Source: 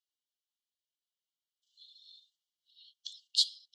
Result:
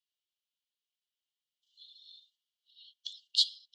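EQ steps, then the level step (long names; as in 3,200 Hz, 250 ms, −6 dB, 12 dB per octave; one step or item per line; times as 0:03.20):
high-pass with resonance 2,800 Hz, resonance Q 1.9
high-shelf EQ 6,000 Hz −8.5 dB
0.0 dB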